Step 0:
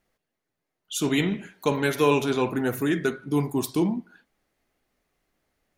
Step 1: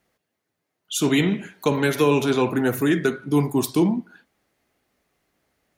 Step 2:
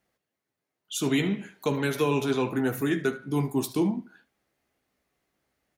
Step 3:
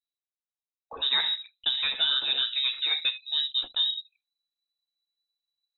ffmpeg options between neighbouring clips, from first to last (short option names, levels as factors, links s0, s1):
-filter_complex "[0:a]highpass=60,acrossover=split=380[s0][s1];[s1]acompressor=threshold=0.0631:ratio=6[s2];[s0][s2]amix=inputs=2:normalize=0,volume=1.68"
-af "aecho=1:1:15|75:0.335|0.126,volume=0.473"
-af "anlmdn=0.398,asubboost=boost=7.5:cutoff=63,lowpass=f=3400:t=q:w=0.5098,lowpass=f=3400:t=q:w=0.6013,lowpass=f=3400:t=q:w=0.9,lowpass=f=3400:t=q:w=2.563,afreqshift=-4000"